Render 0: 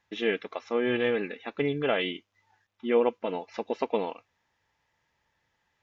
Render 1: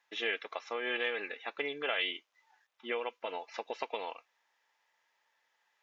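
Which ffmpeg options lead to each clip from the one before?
-filter_complex "[0:a]highpass=630,acrossover=split=1600[a][b];[a]acompressor=threshold=-34dB:ratio=6[c];[c][b]amix=inputs=2:normalize=0"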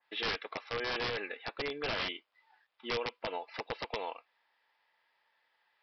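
-af "aresample=11025,aeval=exprs='(mod(22.4*val(0)+1,2)-1)/22.4':c=same,aresample=44100,adynamicequalizer=threshold=0.00316:dfrequency=2000:dqfactor=0.7:tfrequency=2000:tqfactor=0.7:attack=5:release=100:ratio=0.375:range=2:mode=cutabove:tftype=highshelf,volume=1.5dB"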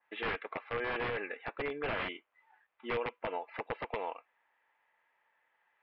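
-af "lowpass=f=2.5k:w=0.5412,lowpass=f=2.5k:w=1.3066,volume=1dB"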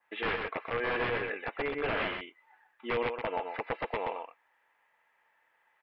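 -af "aecho=1:1:126:0.531,volume=3dB"

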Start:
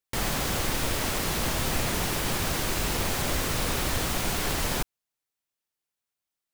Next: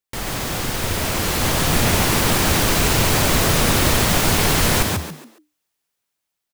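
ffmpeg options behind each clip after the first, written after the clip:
-filter_complex "[0:a]asplit=2[a][b];[b]asplit=4[c][d][e][f];[c]adelay=139,afreqshift=75,volume=-3dB[g];[d]adelay=278,afreqshift=150,volume=-13.2dB[h];[e]adelay=417,afreqshift=225,volume=-23.3dB[i];[f]adelay=556,afreqshift=300,volume=-33.5dB[j];[g][h][i][j]amix=inputs=4:normalize=0[k];[a][k]amix=inputs=2:normalize=0,dynaudnorm=f=380:g=7:m=8.5dB,volume=1dB"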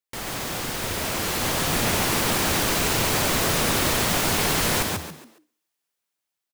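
-af "lowshelf=f=120:g=-9,aecho=1:1:65|130|195|260:0.0891|0.0437|0.0214|0.0105,volume=-4dB"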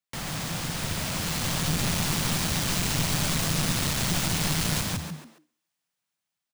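-filter_complex "[0:a]equalizer=f=160:t=o:w=0.67:g=9,equalizer=f=400:t=o:w=0.67:g=-6,equalizer=f=16k:t=o:w=0.67:g=-8,acrossover=split=190|3000[a][b][c];[b]acompressor=threshold=-40dB:ratio=1.5[d];[a][d][c]amix=inputs=3:normalize=0,aeval=exprs='clip(val(0),-1,0.0398)':c=same"

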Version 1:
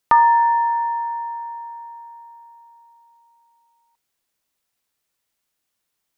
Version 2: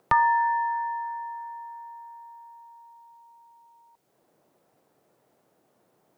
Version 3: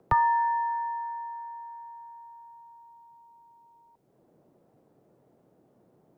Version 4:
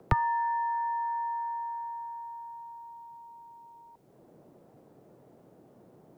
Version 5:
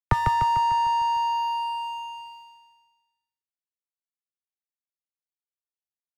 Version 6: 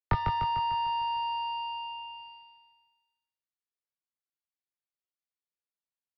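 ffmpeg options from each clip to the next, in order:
-filter_complex "[0:a]equalizer=f=125:t=o:w=1:g=9,equalizer=f=250:t=o:w=1:g=-8,equalizer=f=500:t=o:w=1:g=-4,equalizer=f=1k:t=o:w=1:g=-7,acrossover=split=220|850[a][b][c];[b]acompressor=mode=upward:threshold=-42dB:ratio=2.5[d];[a][d][c]amix=inputs=3:normalize=0"
-filter_complex "[0:a]tiltshelf=f=770:g=9.5,acrossover=split=100|570|1000[a][b][c][d];[b]asoftclip=type=tanh:threshold=-30.5dB[e];[a][e][c][d]amix=inputs=4:normalize=0"
-filter_complex "[0:a]acrossover=split=470|3000[a][b][c];[b]acompressor=threshold=-37dB:ratio=6[d];[a][d][c]amix=inputs=3:normalize=0,volume=6.5dB"
-filter_complex "[0:a]aeval=exprs='sgn(val(0))*max(abs(val(0))-0.0106,0)':c=same,asplit=2[a][b];[b]aecho=0:1:149|298|447|596|745|894|1043:0.531|0.287|0.155|0.0836|0.0451|0.0244|0.0132[c];[a][c]amix=inputs=2:normalize=0,volume=4.5dB"
-filter_complex "[0:a]asplit=2[a][b];[b]adelay=20,volume=-4dB[c];[a][c]amix=inputs=2:normalize=0,aresample=11025,aresample=44100,volume=-6dB"

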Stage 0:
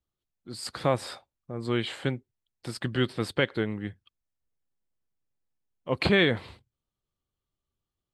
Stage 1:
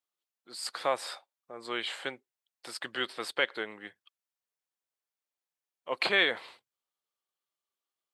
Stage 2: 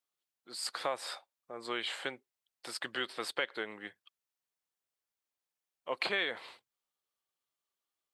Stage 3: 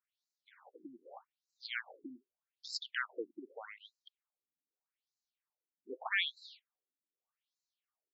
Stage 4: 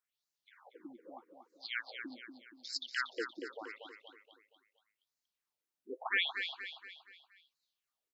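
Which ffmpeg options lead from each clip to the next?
-af "highpass=640"
-af "acompressor=threshold=-32dB:ratio=2.5"
-af "afftfilt=real='re*between(b*sr/1024,240*pow(5500/240,0.5+0.5*sin(2*PI*0.82*pts/sr))/1.41,240*pow(5500/240,0.5+0.5*sin(2*PI*0.82*pts/sr))*1.41)':imag='im*between(b*sr/1024,240*pow(5500/240,0.5+0.5*sin(2*PI*0.82*pts/sr))/1.41,240*pow(5500/240,0.5+0.5*sin(2*PI*0.82*pts/sr))*1.41)':win_size=1024:overlap=0.75,volume=2.5dB"
-af "aecho=1:1:236|472|708|944|1180:0.447|0.205|0.0945|0.0435|0.02,volume=1dB"

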